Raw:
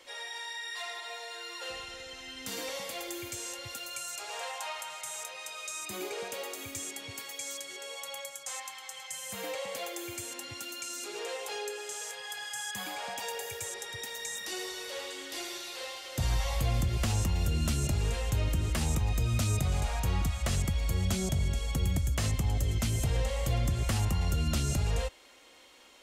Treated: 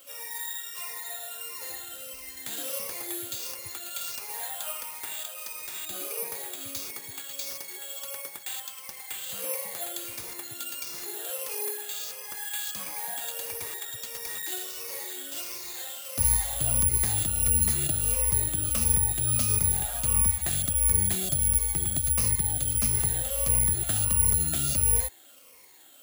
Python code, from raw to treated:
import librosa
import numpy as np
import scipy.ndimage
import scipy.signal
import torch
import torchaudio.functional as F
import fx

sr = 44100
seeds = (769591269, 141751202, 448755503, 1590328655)

y = fx.spec_ripple(x, sr, per_octave=0.86, drift_hz=-1.5, depth_db=12)
y = (np.kron(y[::4], np.eye(4)[0]) * 4)[:len(y)]
y = y * librosa.db_to_amplitude(-4.5)